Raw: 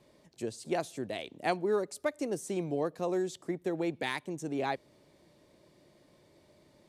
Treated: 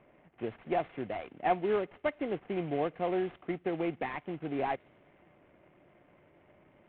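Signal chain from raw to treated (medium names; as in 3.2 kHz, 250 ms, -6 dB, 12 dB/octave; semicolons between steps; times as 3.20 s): CVSD coder 16 kbps; small resonant body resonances 730/2100 Hz, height 8 dB; level-controlled noise filter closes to 2.3 kHz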